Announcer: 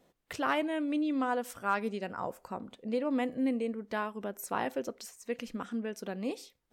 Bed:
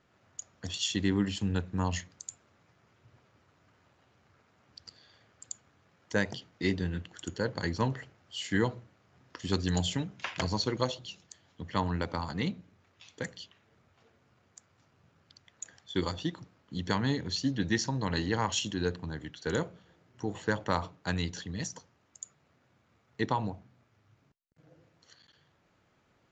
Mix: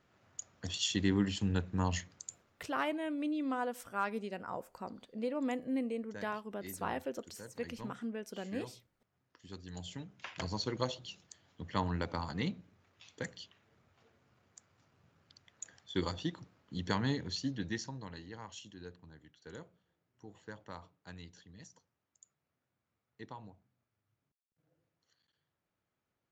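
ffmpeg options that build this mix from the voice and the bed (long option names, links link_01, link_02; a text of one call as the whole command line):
ffmpeg -i stem1.wav -i stem2.wav -filter_complex "[0:a]adelay=2300,volume=-4.5dB[link_01];[1:a]volume=13dB,afade=type=out:start_time=2.14:duration=0.78:silence=0.149624,afade=type=in:start_time=9.68:duration=1.36:silence=0.177828,afade=type=out:start_time=17.07:duration=1.12:silence=0.188365[link_02];[link_01][link_02]amix=inputs=2:normalize=0" out.wav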